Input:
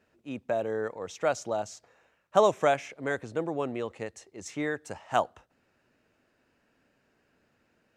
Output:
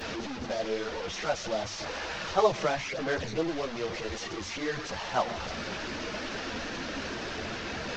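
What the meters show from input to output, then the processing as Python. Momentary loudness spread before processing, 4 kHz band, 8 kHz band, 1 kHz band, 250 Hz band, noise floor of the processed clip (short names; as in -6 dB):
16 LU, +10.0 dB, +3.5 dB, -1.0 dB, +1.5 dB, -38 dBFS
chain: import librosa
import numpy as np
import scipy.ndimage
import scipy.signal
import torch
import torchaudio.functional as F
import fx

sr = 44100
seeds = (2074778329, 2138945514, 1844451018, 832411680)

y = fx.delta_mod(x, sr, bps=32000, step_db=-27.0)
y = fx.chorus_voices(y, sr, voices=4, hz=1.2, base_ms=12, depth_ms=3.3, mix_pct=65)
y = fx.hum_notches(y, sr, base_hz=50, count=2)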